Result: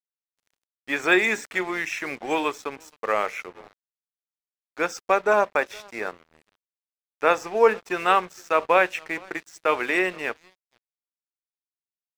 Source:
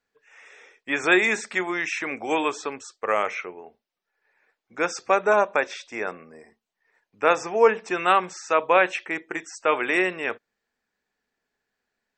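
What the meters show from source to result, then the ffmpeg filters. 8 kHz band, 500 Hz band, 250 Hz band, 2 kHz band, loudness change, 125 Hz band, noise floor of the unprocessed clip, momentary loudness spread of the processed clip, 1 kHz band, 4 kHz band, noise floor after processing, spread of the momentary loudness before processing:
-2.5 dB, -0.5 dB, -1.0 dB, -0.5 dB, -0.5 dB, -1.0 dB, -83 dBFS, 13 LU, -0.5 dB, -0.5 dB, under -85 dBFS, 13 LU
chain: -filter_complex "[0:a]asplit=2[s0][s1];[s1]adelay=466.5,volume=0.0794,highshelf=f=4000:g=-10.5[s2];[s0][s2]amix=inputs=2:normalize=0,aeval=exprs='sgn(val(0))*max(abs(val(0))-0.00841,0)':c=same"

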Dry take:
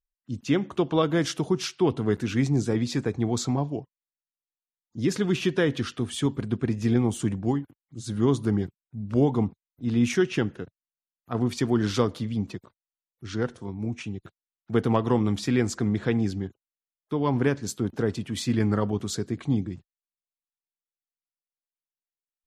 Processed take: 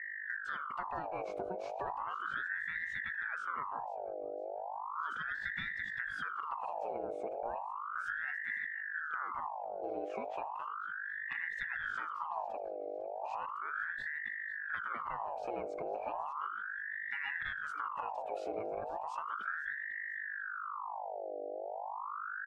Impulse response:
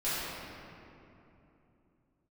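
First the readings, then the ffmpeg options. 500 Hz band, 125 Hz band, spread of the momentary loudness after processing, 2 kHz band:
-13.0 dB, -35.0 dB, 4 LU, +2.0 dB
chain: -filter_complex "[0:a]acrossover=split=7000[s0][s1];[s1]acompressor=threshold=0.00398:ratio=4:attack=1:release=60[s2];[s0][s2]amix=inputs=2:normalize=0,firequalizer=gain_entry='entry(150,0);entry(290,-11);entry(1600,6);entry(2500,-19)':delay=0.05:min_phase=1,acompressor=threshold=0.0141:ratio=12,aeval=exprs='val(0)+0.01*(sin(2*PI*50*n/s)+sin(2*PI*2*50*n/s)/2+sin(2*PI*3*50*n/s)/3+sin(2*PI*4*50*n/s)/4+sin(2*PI*5*50*n/s)/5)':c=same,asuperstop=centerf=1300:order=8:qfactor=2.2,aecho=1:1:500|1000|1500:0.15|0.0509|0.0173,aeval=exprs='val(0)*sin(2*PI*1200*n/s+1200*0.55/0.35*sin(2*PI*0.35*n/s))':c=same,volume=1.12"

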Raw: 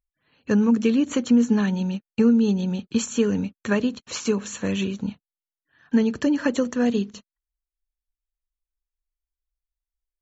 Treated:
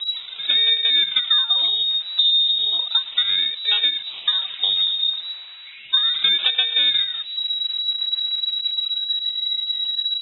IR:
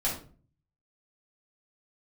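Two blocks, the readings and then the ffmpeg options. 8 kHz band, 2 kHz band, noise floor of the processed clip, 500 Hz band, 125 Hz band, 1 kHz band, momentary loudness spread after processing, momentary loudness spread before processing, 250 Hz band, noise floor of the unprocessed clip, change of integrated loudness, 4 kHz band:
no reading, +5.0 dB, -39 dBFS, under -20 dB, under -25 dB, -2.0 dB, 7 LU, 9 LU, under -30 dB, under -85 dBFS, +5.0 dB, +26.0 dB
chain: -filter_complex "[0:a]aeval=exprs='val(0)+0.5*0.0531*sgn(val(0))':c=same,afwtdn=0.0562,aecho=1:1:3.5:0.69,acompressor=threshold=0.0891:ratio=6,acrusher=samples=16:mix=1:aa=0.000001:lfo=1:lforange=16:lforate=0.34,asplit=2[s0][s1];[s1]adelay=111,lowpass=f=2000:p=1,volume=0.158,asplit=2[s2][s3];[s3]adelay=111,lowpass=f=2000:p=1,volume=0.54,asplit=2[s4][s5];[s5]adelay=111,lowpass=f=2000:p=1,volume=0.54,asplit=2[s6][s7];[s7]adelay=111,lowpass=f=2000:p=1,volume=0.54,asplit=2[s8][s9];[s9]adelay=111,lowpass=f=2000:p=1,volume=0.54[s10];[s0][s2][s4][s6][s8][s10]amix=inputs=6:normalize=0,lowpass=f=3300:t=q:w=0.5098,lowpass=f=3300:t=q:w=0.6013,lowpass=f=3300:t=q:w=0.9,lowpass=f=3300:t=q:w=2.563,afreqshift=-3900,volume=1.78"

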